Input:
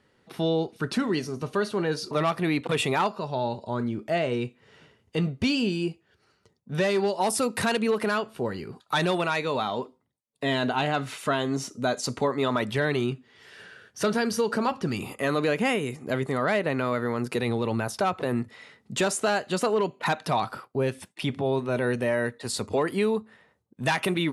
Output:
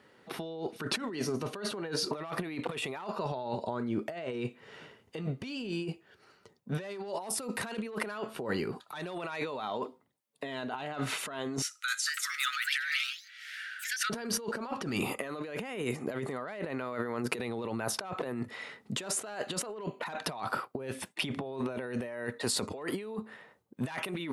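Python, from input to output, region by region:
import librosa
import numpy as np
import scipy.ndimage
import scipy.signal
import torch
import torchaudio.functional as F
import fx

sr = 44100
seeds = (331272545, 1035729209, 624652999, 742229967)

y = fx.chain(x, sr, fx.steep_highpass(hz=1300.0, slope=96),
    fx.echo_pitch(ms=259, semitones=3, count=3, db_per_echo=-6.0), at=(11.62, 14.1))
y = fx.highpass(y, sr, hz=280.0, slope=6)
y = fx.peak_eq(y, sr, hz=6500.0, db=-4.5, octaves=2.2)
y = fx.over_compress(y, sr, threshold_db=-36.0, ratio=-1.0)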